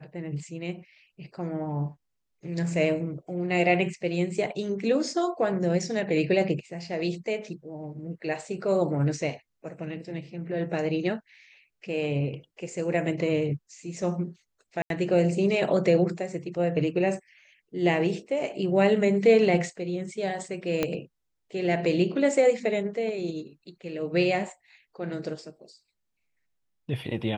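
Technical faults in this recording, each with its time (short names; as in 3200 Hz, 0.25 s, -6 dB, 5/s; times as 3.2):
14.82–14.9 gap 82 ms
20.83 pop -11 dBFS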